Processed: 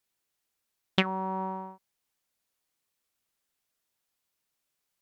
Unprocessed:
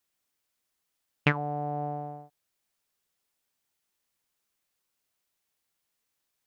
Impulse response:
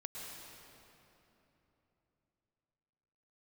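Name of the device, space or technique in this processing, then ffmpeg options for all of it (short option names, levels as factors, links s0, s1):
nightcore: -af "asetrate=56889,aresample=44100"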